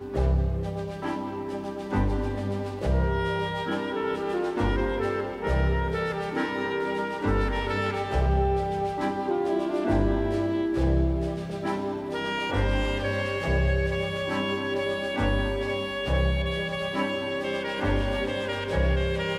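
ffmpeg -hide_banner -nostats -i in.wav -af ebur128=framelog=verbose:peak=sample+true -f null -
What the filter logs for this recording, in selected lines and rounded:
Integrated loudness:
  I:         -27.4 LUFS
  Threshold: -37.4 LUFS
Loudness range:
  LRA:         2.1 LU
  Threshold: -47.3 LUFS
  LRA low:   -28.4 LUFS
  LRA high:  -26.3 LUFS
Sample peak:
  Peak:      -12.2 dBFS
True peak:
  Peak:      -12.1 dBFS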